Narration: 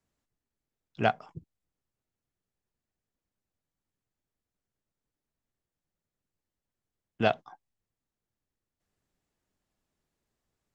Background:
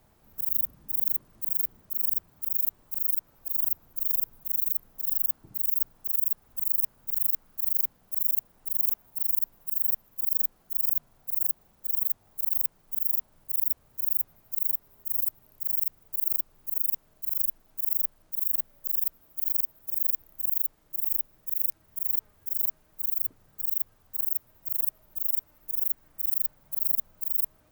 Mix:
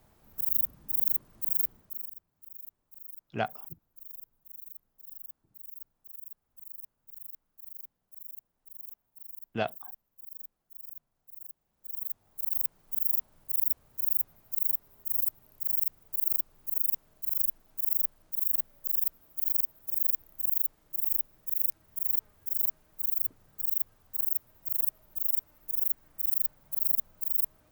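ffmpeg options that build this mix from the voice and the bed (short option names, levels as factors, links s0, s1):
-filter_complex "[0:a]adelay=2350,volume=0.531[s0];[1:a]volume=7.5,afade=t=out:st=1.64:d=0.47:silence=0.11885,afade=t=in:st=11.63:d=1.24:silence=0.125893[s1];[s0][s1]amix=inputs=2:normalize=0"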